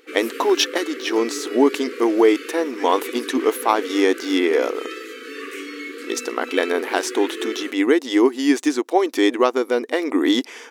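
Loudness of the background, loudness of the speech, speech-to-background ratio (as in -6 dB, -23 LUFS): -32.0 LUFS, -20.5 LUFS, 11.5 dB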